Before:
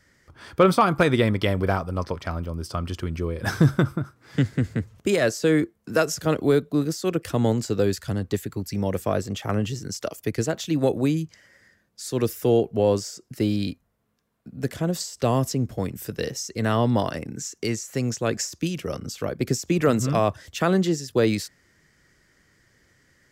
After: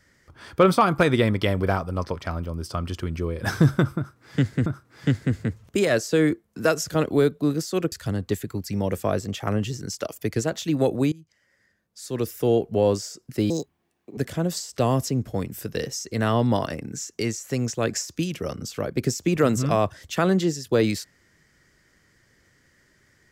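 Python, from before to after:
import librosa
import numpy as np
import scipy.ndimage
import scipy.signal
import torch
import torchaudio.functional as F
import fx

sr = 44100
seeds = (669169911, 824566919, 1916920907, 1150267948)

y = fx.edit(x, sr, fx.repeat(start_s=3.97, length_s=0.69, count=2),
    fx.cut(start_s=7.23, length_s=0.71),
    fx.fade_in_from(start_s=11.14, length_s=1.6, floor_db=-22.5),
    fx.speed_span(start_s=13.52, length_s=1.09, speed=1.62), tone=tone)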